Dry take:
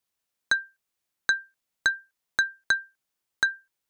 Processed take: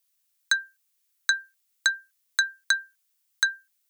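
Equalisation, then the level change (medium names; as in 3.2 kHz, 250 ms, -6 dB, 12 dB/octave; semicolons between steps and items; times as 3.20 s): high-pass 960 Hz 12 dB/octave; tilt EQ +3.5 dB/octave; -2.0 dB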